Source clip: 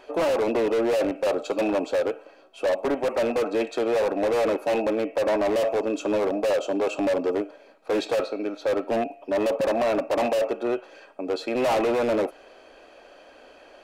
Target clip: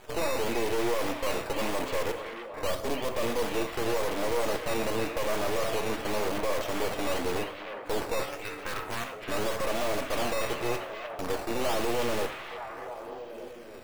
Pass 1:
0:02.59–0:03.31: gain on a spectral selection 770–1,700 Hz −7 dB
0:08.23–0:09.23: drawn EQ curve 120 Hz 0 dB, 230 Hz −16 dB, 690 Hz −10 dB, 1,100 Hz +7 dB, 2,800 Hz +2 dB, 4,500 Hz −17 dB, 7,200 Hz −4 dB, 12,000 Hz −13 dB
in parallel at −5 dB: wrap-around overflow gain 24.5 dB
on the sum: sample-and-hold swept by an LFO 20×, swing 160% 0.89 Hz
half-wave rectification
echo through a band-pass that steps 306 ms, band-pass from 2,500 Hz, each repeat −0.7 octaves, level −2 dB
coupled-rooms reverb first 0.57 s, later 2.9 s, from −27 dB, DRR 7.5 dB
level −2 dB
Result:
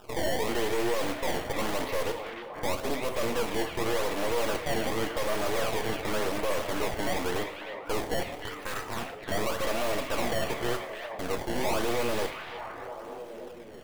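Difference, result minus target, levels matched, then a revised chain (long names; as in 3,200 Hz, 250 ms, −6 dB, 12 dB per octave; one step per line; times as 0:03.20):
sample-and-hold swept by an LFO: distortion +8 dB
0:02.59–0:03.31: gain on a spectral selection 770–1,700 Hz −7 dB
0:08.23–0:09.23: drawn EQ curve 120 Hz 0 dB, 230 Hz −16 dB, 690 Hz −10 dB, 1,100 Hz +7 dB, 2,800 Hz +2 dB, 4,500 Hz −17 dB, 7,200 Hz −4 dB, 12,000 Hz −13 dB
in parallel at −5 dB: wrap-around overflow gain 24.5 dB
on the sum: sample-and-hold swept by an LFO 8×, swing 160% 0.89 Hz
half-wave rectification
echo through a band-pass that steps 306 ms, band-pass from 2,500 Hz, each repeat −0.7 octaves, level −2 dB
coupled-rooms reverb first 0.57 s, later 2.9 s, from −27 dB, DRR 7.5 dB
level −2 dB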